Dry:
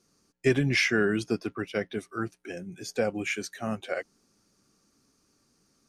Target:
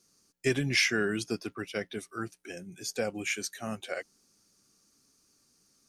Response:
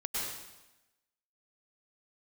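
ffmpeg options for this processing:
-af "highshelf=f=3.3k:g=11,volume=-5dB"

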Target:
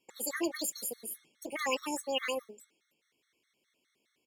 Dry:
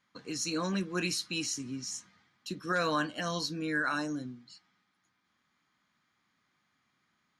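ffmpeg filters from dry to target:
-af "acrusher=bits=9:mode=log:mix=0:aa=0.000001,asetrate=76440,aresample=44100,afftfilt=real='re*gt(sin(2*PI*4.8*pts/sr)*(1-2*mod(floor(b*sr/1024/1100),2)),0)':imag='im*gt(sin(2*PI*4.8*pts/sr)*(1-2*mod(floor(b*sr/1024/1100),2)),0)':win_size=1024:overlap=0.75,volume=1.5dB"

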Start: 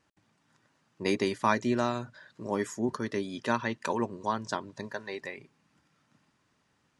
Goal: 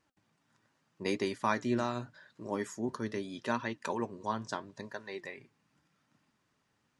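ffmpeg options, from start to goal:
-af "flanger=delay=2.6:depth=7:regen=79:speed=0.81:shape=triangular"

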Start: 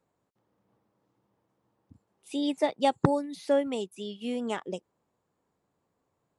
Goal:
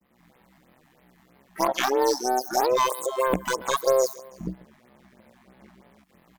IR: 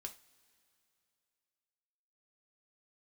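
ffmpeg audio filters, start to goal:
-filter_complex "[0:a]areverse,acrossover=split=1000|3300[a][b][c];[a]acompressor=threshold=-36dB:ratio=4[d];[b]acompressor=threshold=-49dB:ratio=4[e];[c]acompressor=threshold=-53dB:ratio=4[f];[d][e][f]amix=inputs=3:normalize=0,asplit=2[g][h];[h]aecho=0:1:140|280|420:0.1|0.044|0.0194[i];[g][i]amix=inputs=2:normalize=0,aeval=exprs='0.251*sin(PI/2*4.47*val(0)/0.251)':c=same,equalizer=f=100:t=o:w=0.33:g=12,equalizer=f=200:t=o:w=0.33:g=-7,equalizer=f=500:t=o:w=0.33:g=-3,equalizer=f=800:t=o:w=0.33:g=-6,tremolo=f=71:d=0.788,dynaudnorm=f=120:g=3:m=9.5dB,asetrate=80880,aresample=44100,atempo=0.545254,asoftclip=type=hard:threshold=-8dB,adynamicequalizer=threshold=0.0224:dfrequency=1700:dqfactor=0.81:tfrequency=1700:tqfactor=0.81:attack=5:release=100:ratio=0.375:range=3:mode=cutabove:tftype=bell,asplit=2[j][k];[k]asetrate=88200,aresample=44100,atempo=0.5,volume=-16dB[l];[j][l]amix=inputs=2:normalize=0,afftfilt=real='re*(1-between(b*sr/1024,420*pow(7400/420,0.5+0.5*sin(2*PI*3.1*pts/sr))/1.41,420*pow(7400/420,0.5+0.5*sin(2*PI*3.1*pts/sr))*1.41))':imag='im*(1-between(b*sr/1024,420*pow(7400/420,0.5+0.5*sin(2*PI*3.1*pts/sr))/1.41,420*pow(7400/420,0.5+0.5*sin(2*PI*3.1*pts/sr))*1.41))':win_size=1024:overlap=0.75,volume=-3dB"

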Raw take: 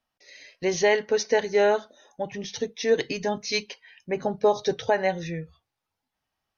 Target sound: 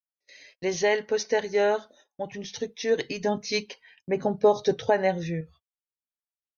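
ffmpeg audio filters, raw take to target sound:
-filter_complex "[0:a]agate=range=-27dB:threshold=-51dB:ratio=16:detection=peak,asettb=1/sr,asplit=3[a][b][c];[a]atrim=end=3.234[d];[b]atrim=start=3.23:end=5.41,asetpts=PTS-STARTPTS,afade=t=in:d=0.004:c=qsin,afade=t=out:st=2.176:d=0.004:c=qsin,equalizer=f=210:w=0.31:g=5[e];[c]atrim=start=5.406[f];[d][e]acrossfade=d=0.004:c1=hsin:c2=qsin[g];[g][f]acrossfade=d=0.004:c1=qsin:c2=hsin,volume=-2.5dB"

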